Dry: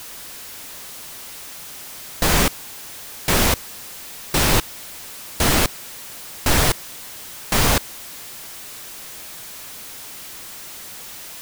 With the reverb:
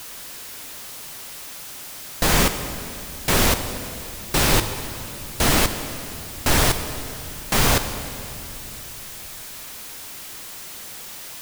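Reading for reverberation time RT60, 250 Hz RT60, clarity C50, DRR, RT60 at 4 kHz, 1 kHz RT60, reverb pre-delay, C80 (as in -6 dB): 2.9 s, 3.7 s, 9.0 dB, 8.0 dB, 2.3 s, 2.6 s, 5 ms, 10.0 dB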